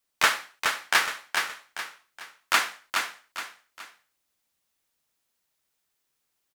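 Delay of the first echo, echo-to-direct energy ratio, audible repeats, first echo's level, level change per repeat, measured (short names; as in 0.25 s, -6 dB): 0.42 s, -4.5 dB, 3, -5.0 dB, -8.5 dB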